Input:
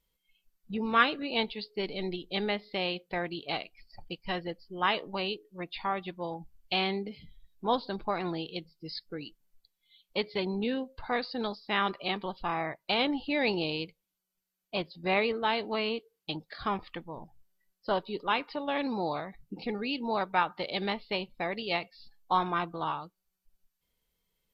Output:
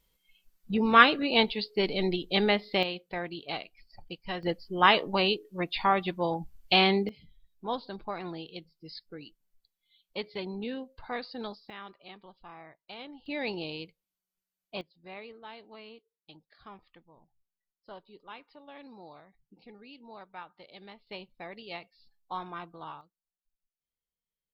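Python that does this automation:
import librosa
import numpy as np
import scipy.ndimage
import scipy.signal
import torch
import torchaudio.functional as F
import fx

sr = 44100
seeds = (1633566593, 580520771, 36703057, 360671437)

y = fx.gain(x, sr, db=fx.steps((0.0, 6.0), (2.83, -2.0), (4.43, 7.0), (7.09, -5.0), (11.7, -16.5), (13.26, -5.5), (14.81, -17.5), (21.07, -10.0), (23.01, -18.0)))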